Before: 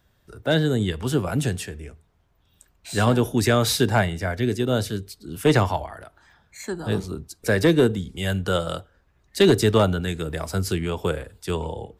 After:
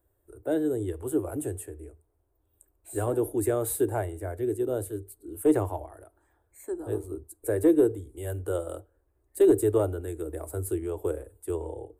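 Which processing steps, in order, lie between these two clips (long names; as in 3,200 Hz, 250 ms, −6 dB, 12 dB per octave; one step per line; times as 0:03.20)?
drawn EQ curve 100 Hz 0 dB, 200 Hz −25 dB, 310 Hz +8 dB, 5,400 Hz −23 dB, 8,700 Hz +6 dB
level −7.5 dB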